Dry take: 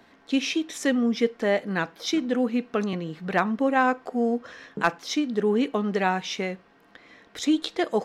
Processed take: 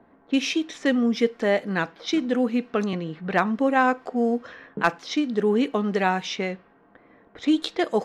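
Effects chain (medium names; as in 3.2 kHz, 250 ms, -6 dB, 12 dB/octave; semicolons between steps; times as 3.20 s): level-controlled noise filter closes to 960 Hz, open at -22 dBFS; trim +1.5 dB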